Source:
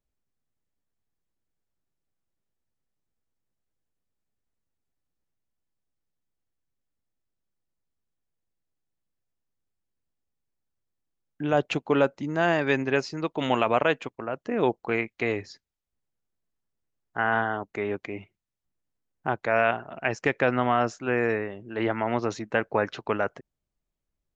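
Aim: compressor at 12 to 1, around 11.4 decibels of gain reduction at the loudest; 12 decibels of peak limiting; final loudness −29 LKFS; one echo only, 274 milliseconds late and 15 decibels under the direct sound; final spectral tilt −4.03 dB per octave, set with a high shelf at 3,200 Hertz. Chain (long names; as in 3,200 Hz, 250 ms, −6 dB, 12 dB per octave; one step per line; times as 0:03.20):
high-shelf EQ 3,200 Hz +6 dB
downward compressor 12 to 1, threshold −28 dBFS
brickwall limiter −24.5 dBFS
single-tap delay 274 ms −15 dB
level +8.5 dB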